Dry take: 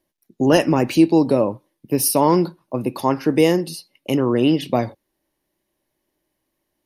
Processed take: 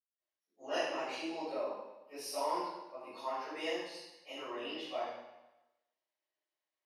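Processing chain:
band-pass filter 780–5,500 Hz
convolution reverb RT60 1.0 s, pre-delay 161 ms, DRR −60 dB
level +5 dB

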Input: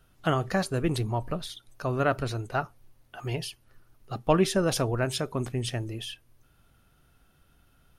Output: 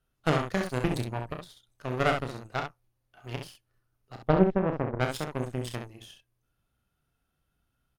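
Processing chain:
0:04.28–0:05.00: Bessel low-pass filter 660 Hz, order 2
harmonic generator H 2 −6 dB, 3 −18 dB, 5 −43 dB, 7 −23 dB, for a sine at −12 dBFS
on a send: ambience of single reflections 32 ms −7.5 dB, 66 ms −6 dB

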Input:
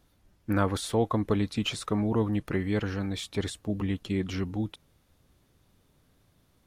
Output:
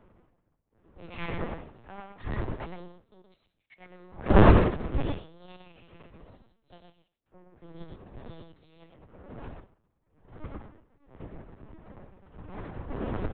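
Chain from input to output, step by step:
wind on the microphone 250 Hz −25 dBFS
parametric band 330 Hz −5 dB 1.7 octaves
time stretch by phase vocoder 2×
power curve on the samples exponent 2
upward compression, threshold −40 dBFS
pitch shifter +9.5 semitones
single-tap delay 114 ms −3.5 dB
on a send at −15 dB: convolution reverb RT60 0.65 s, pre-delay 22 ms
on the sum: linear-prediction vocoder at 8 kHz pitch kept
multiband upward and downward expander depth 70%

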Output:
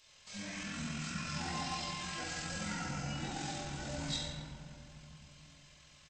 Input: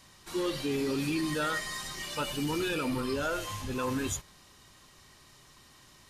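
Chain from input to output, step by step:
rectangular room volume 190 cubic metres, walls hard, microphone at 1.1 metres
pitch shifter −10 semitones
first-order pre-emphasis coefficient 0.9
level +1 dB

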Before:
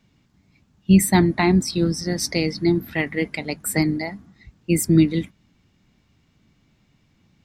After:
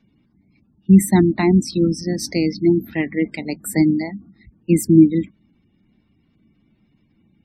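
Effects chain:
gate on every frequency bin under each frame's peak −25 dB strong
0:03.79–0:04.79: dynamic equaliser 190 Hz, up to +4 dB, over −35 dBFS, Q 3.2
hollow resonant body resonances 220/310 Hz, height 8 dB, ringing for 40 ms
level −2.5 dB

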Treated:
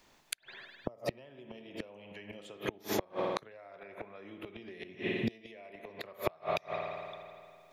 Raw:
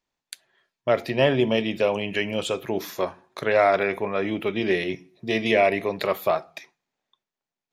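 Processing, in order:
gain on a spectral selection 0:00.67–0:01.07, 1,300–4,700 Hz −16 dB
spring reverb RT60 1.6 s, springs 49 ms, chirp 55 ms, DRR 7 dB
downward compressor 12 to 1, threshold −28 dBFS, peak gain reduction 15.5 dB
gate with flip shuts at −24 dBFS, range −30 dB
multiband upward and downward compressor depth 40%
level +7.5 dB

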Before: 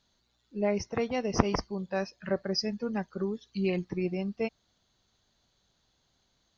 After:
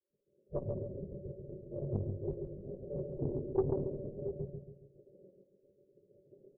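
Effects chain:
sub-harmonics by changed cycles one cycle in 2, muted
camcorder AGC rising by 46 dB per second
gate on every frequency bin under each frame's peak −15 dB weak
0:03.61–0:04.02: transient designer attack −7 dB, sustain +10 dB
Chebyshev low-pass with heavy ripple 590 Hz, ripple 9 dB
square-wave tremolo 0.67 Hz, depth 60%, duty 55%
rotating-speaker cabinet horn 5 Hz, later 0.85 Hz, at 0:01.74
0:01.74–0:02.70: double-tracking delay 20 ms −2 dB
repeating echo 138 ms, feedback 43%, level −5 dB
on a send at −6 dB: convolution reverb RT60 0.25 s, pre-delay 3 ms
on the sum: saturating transformer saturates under 270 Hz
level +12 dB

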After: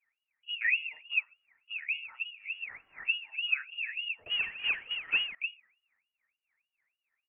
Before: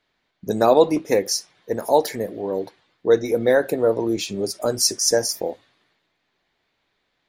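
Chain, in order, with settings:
0:02.52–0:03.26: spike at every zero crossing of −14.5 dBFS
double-tracking delay 39 ms −7 dB
LFO wah 3.4 Hz 210–1,300 Hz, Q 18
in parallel at +2 dB: downward compressor, threshold −41 dBFS, peak gain reduction 19 dB
on the sum: parametric band 1,600 Hz +7.5 dB 2.7 octaves
0:04.26–0:05.35: power curve on the samples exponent 0.5
voice inversion scrambler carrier 3,100 Hz
level −6 dB

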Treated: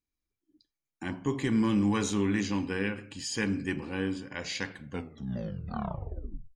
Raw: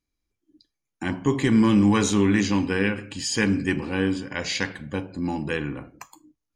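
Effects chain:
turntable brake at the end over 1.71 s
level −8 dB

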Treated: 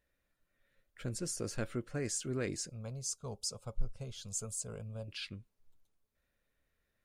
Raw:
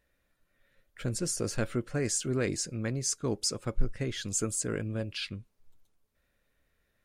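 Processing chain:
0:02.69–0:05.08: phaser with its sweep stopped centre 760 Hz, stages 4
level −6.5 dB

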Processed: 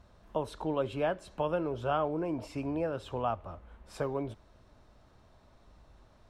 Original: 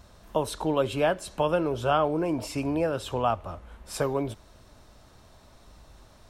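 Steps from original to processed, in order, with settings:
low-pass filter 2,400 Hz 6 dB per octave
level −6 dB

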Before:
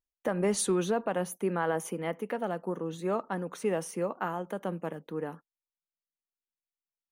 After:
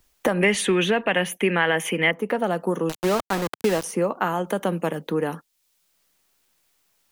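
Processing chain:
0:00.41–0:02.11: flat-topped bell 2,400 Hz +15.5 dB 1.2 octaves
0:02.89–0:03.84: centre clipping without the shift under −33.5 dBFS
multiband upward and downward compressor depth 70%
level +7.5 dB

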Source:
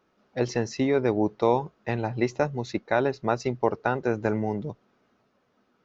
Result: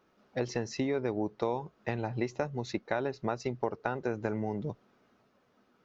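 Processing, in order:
downward compressor 3 to 1, threshold −30 dBFS, peak gain reduction 11 dB

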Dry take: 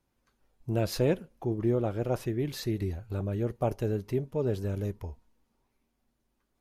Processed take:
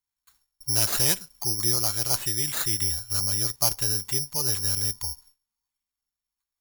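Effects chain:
noise gate with hold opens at −57 dBFS
octave-band graphic EQ 250/500/1,000/2,000/4,000/8,000 Hz −6/−11/+9/+7/+7/−9 dB
bad sample-rate conversion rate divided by 8×, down none, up zero stuff
level −1.5 dB

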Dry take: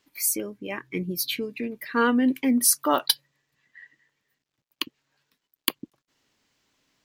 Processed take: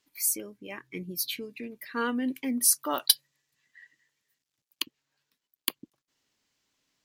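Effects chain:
parametric band 10,000 Hz +6.5 dB 2.6 octaves, from 0:02.97 +12.5 dB, from 0:04.82 +5.5 dB
level −8.5 dB

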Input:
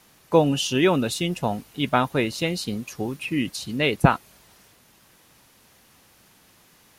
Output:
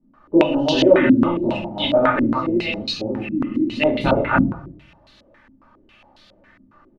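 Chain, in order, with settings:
delay that plays each chunk backwards 183 ms, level −2 dB
comb filter 3.4 ms, depth 56%
0:02.30–0:03.69: downward compressor, threshold −21 dBFS, peak gain reduction 4.5 dB
rectangular room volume 61 cubic metres, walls mixed, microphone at 1.2 metres
low-pass on a step sequencer 7.3 Hz 250–4,000 Hz
level −7.5 dB

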